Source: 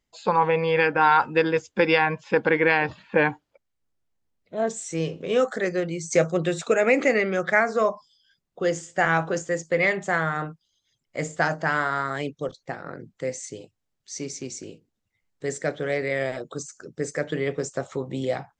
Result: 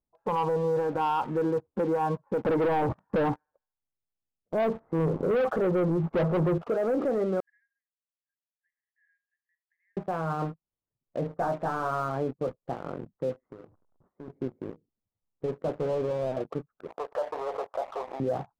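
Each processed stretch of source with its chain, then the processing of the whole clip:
0:02.43–0:06.58: leveller curve on the samples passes 3 + delay with a high-pass on its return 72 ms, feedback 51%, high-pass 4,300 Hz, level −19 dB
0:07.40–0:09.97: downward compressor 3 to 1, threshold −38 dBFS + linear-phase brick-wall high-pass 1,600 Hz
0:11.39–0:12.73: double-tracking delay 16 ms −8 dB + hard clipping −19 dBFS
0:13.45–0:14.28: converter with a step at zero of −43.5 dBFS + low-shelf EQ 61 Hz −11.5 dB + downward compressor 4 to 1, threshold −41 dBFS
0:15.46–0:16.37: hard clipping −26 dBFS + high-frequency loss of the air 480 metres
0:16.87–0:18.20: leveller curve on the samples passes 3 + four-pole ladder high-pass 600 Hz, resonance 45% + background raised ahead of every attack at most 97 dB per second
whole clip: Butterworth low-pass 1,200 Hz 36 dB per octave; leveller curve on the samples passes 2; brickwall limiter −16 dBFS; level −5 dB

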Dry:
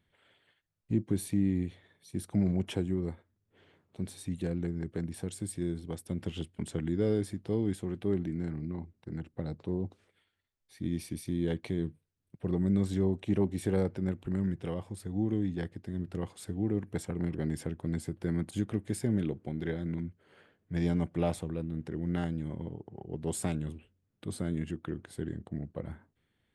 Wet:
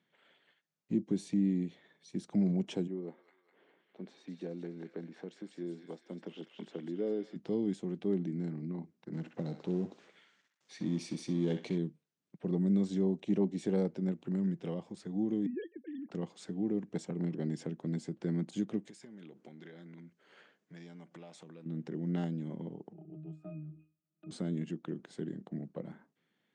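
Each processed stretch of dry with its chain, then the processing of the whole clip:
0:02.87–0:07.36: high-pass filter 310 Hz + head-to-tape spacing loss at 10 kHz 25 dB + delay with a high-pass on its return 203 ms, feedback 58%, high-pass 1,800 Hz, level −3 dB
0:09.13–0:11.78: mu-law and A-law mismatch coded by mu + feedback echo with a band-pass in the loop 64 ms, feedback 42%, band-pass 1,800 Hz, level −5 dB
0:15.46–0:16.11: three sine waves on the formant tracks + dynamic equaliser 260 Hz, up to −6 dB, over −46 dBFS, Q 4.6
0:18.85–0:21.66: spectral tilt +2 dB per octave + downward compressor 12 to 1, threshold −45 dBFS
0:22.93–0:24.31: resonances in every octave D#, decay 0.3 s + multiband upward and downward compressor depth 70%
whole clip: elliptic band-pass filter 170–6,800 Hz, stop band 40 dB; dynamic equaliser 1,500 Hz, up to −8 dB, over −54 dBFS, Q 0.76

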